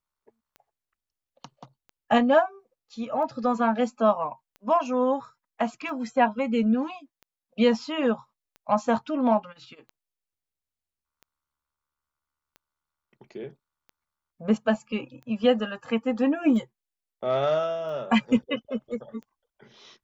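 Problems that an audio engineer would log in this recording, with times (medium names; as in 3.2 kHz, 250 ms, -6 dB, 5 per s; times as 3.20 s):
tick 45 rpm -32 dBFS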